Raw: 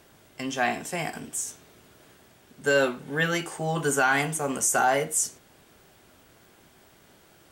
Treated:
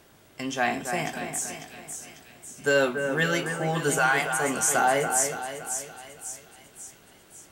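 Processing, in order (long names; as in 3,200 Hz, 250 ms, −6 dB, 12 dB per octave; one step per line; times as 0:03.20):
0:03.98–0:04.39: Butterworth high-pass 540 Hz
echo with a time of its own for lows and highs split 2,500 Hz, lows 284 ms, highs 546 ms, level −7 dB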